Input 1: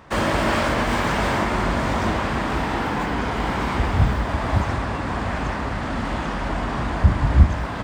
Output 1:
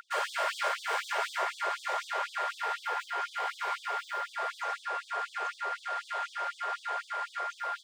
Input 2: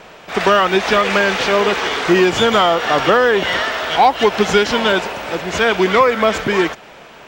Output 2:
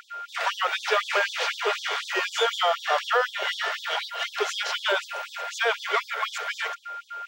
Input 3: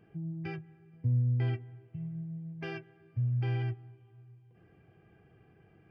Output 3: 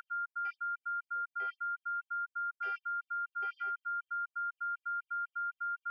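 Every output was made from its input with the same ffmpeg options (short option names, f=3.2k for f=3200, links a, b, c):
-af "aeval=exprs='val(0)+0.0562*sin(2*PI*1400*n/s)':c=same,afftfilt=real='re*gte(b*sr/1024,370*pow(3300/370,0.5+0.5*sin(2*PI*4*pts/sr)))':imag='im*gte(b*sr/1024,370*pow(3300/370,0.5+0.5*sin(2*PI*4*pts/sr)))':win_size=1024:overlap=0.75,volume=-7.5dB"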